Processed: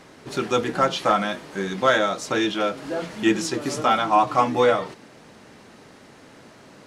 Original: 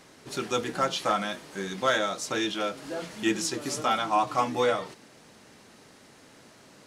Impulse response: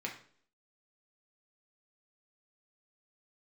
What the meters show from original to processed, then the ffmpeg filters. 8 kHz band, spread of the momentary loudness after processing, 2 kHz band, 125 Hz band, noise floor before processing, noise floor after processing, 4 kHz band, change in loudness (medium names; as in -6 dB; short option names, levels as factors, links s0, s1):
0.0 dB, 11 LU, +5.5 dB, +7.0 dB, -54 dBFS, -49 dBFS, +3.0 dB, +6.0 dB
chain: -af "highshelf=f=3900:g=-9,volume=2.24"